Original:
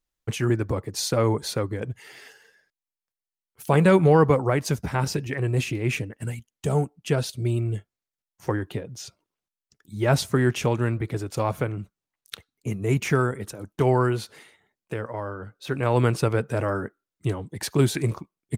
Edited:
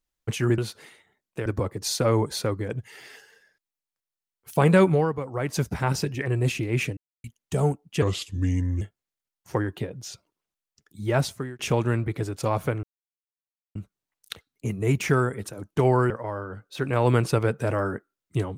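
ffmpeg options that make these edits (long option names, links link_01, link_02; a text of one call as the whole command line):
ffmpeg -i in.wav -filter_complex "[0:a]asplit=12[link_01][link_02][link_03][link_04][link_05][link_06][link_07][link_08][link_09][link_10][link_11][link_12];[link_01]atrim=end=0.582[link_13];[link_02]atrim=start=14.118:end=15.002[link_14];[link_03]atrim=start=0.578:end=4.25,asetpts=PTS-STARTPTS,afade=type=out:start_time=3.332:duration=0.34:silence=0.251189[link_15];[link_04]atrim=start=4.25:end=4.4,asetpts=PTS-STARTPTS,volume=-12dB[link_16];[link_05]atrim=start=4.4:end=6.09,asetpts=PTS-STARTPTS,afade=type=in:duration=0.34:silence=0.251189,afade=type=out:start_time=1.686:duration=0.004:curve=hsin[link_17];[link_06]atrim=start=6.09:end=6.36,asetpts=PTS-STARTPTS,volume=0[link_18];[link_07]atrim=start=6.36:end=7.144,asetpts=PTS-STARTPTS,afade=type=in:duration=0.004:curve=hsin[link_19];[link_08]atrim=start=7.14:end=7.75,asetpts=PTS-STARTPTS,asetrate=33957,aresample=44100,atrim=end_sample=34936,asetpts=PTS-STARTPTS[link_20];[link_09]atrim=start=7.746:end=10.53,asetpts=PTS-STARTPTS,afade=type=out:start_time=2.224:duration=0.56[link_21];[link_10]atrim=start=10.53:end=11.77,asetpts=PTS-STARTPTS,afade=type=in:duration=0.004:curve=hsin,afade=type=out:start_time=1.236:duration=0.004:curve=hsin,apad=pad_dur=0.92[link_22];[link_11]atrim=start=11.77:end=14.122,asetpts=PTS-STARTPTS,afade=type=in:duration=0.004:curve=hsin[link_23];[link_12]atrim=start=14.998[link_24];[link_13][link_14]acrossfade=duration=0.004:curve1=hsin:curve2=hsin[link_25];[link_15][link_16][link_17][link_18][link_19]concat=n=5:v=0:a=1[link_26];[link_25][link_26]acrossfade=duration=0.004:curve1=hsin:curve2=hsin[link_27];[link_27][link_20]acrossfade=duration=0.004:curve1=hsin:curve2=hsin[link_28];[link_21][link_22][link_23]concat=n=3:v=0:a=1[link_29];[link_28][link_29]acrossfade=duration=0.004:curve1=hsin:curve2=hsin[link_30];[link_30][link_24]acrossfade=duration=0.004:curve1=hsin:curve2=hsin" out.wav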